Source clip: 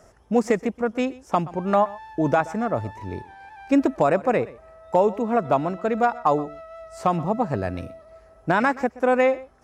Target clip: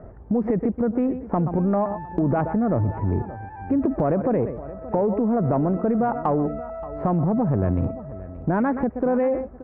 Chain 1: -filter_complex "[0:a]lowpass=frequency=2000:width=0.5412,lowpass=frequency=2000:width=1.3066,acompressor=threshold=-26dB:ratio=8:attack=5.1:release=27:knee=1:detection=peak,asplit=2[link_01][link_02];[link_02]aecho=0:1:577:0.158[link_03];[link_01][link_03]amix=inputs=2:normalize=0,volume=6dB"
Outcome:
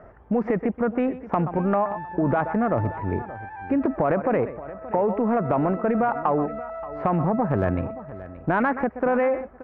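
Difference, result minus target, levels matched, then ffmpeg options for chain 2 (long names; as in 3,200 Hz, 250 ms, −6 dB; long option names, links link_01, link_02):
1,000 Hz band +3.5 dB
-filter_complex "[0:a]lowpass=frequency=2000:width=0.5412,lowpass=frequency=2000:width=1.3066,tiltshelf=frequency=750:gain=9.5,acompressor=threshold=-26dB:ratio=8:attack=5.1:release=27:knee=1:detection=peak,asplit=2[link_01][link_02];[link_02]aecho=0:1:577:0.158[link_03];[link_01][link_03]amix=inputs=2:normalize=0,volume=6dB"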